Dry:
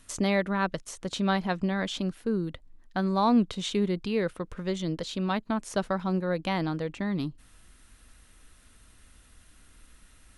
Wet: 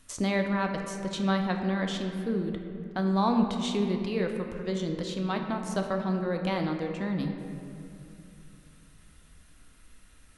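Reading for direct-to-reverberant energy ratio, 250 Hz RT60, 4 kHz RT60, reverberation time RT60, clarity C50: 3.5 dB, 3.3 s, 1.6 s, 2.7 s, 5.0 dB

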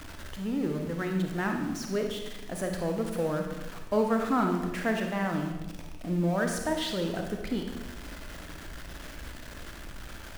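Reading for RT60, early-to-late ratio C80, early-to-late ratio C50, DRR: 1.1 s, 6.5 dB, 4.0 dB, 2.5 dB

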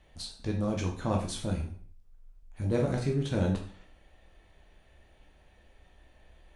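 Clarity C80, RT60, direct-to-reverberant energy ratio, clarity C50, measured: 11.5 dB, 0.50 s, 0.0 dB, 7.0 dB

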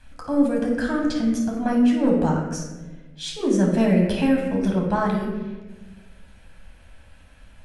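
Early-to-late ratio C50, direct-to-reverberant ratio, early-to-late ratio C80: 2.5 dB, −1.5 dB, 5.5 dB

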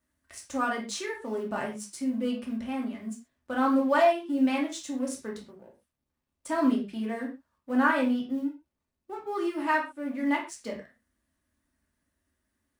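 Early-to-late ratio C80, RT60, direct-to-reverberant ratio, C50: 13.0 dB, non-exponential decay, −2.0 dB, 8.5 dB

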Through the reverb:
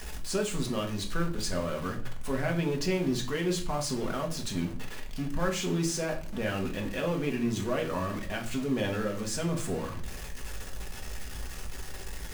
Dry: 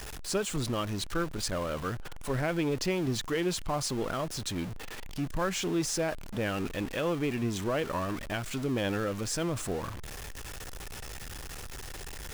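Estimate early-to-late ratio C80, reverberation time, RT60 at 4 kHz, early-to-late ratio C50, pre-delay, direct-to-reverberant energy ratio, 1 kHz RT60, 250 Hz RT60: 15.5 dB, 0.45 s, 0.40 s, 11.0 dB, 4 ms, 0.5 dB, 0.40 s, 0.60 s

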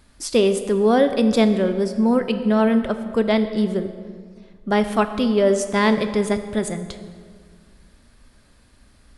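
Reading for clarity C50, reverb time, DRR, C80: 10.5 dB, 1.9 s, 8.5 dB, 11.5 dB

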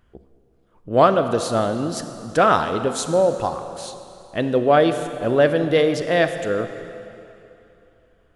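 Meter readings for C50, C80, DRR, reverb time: 9.5 dB, 10.0 dB, 9.0 dB, 2.9 s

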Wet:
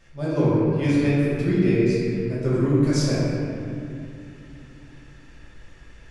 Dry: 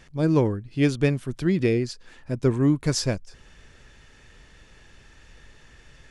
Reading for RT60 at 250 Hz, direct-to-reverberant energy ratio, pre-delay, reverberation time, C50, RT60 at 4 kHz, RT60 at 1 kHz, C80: 4.0 s, −9.5 dB, 3 ms, 2.7 s, −3.5 dB, 1.6 s, 2.4 s, −1.5 dB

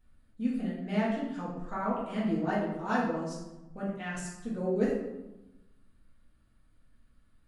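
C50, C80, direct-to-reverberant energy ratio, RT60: 1.5 dB, 4.5 dB, −8.0 dB, 1.0 s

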